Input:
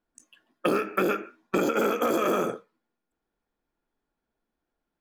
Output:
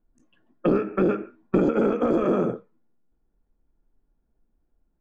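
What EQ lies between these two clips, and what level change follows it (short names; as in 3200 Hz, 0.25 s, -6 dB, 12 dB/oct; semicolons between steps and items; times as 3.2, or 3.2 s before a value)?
air absorption 58 m; tilt -4.5 dB/oct; -2.0 dB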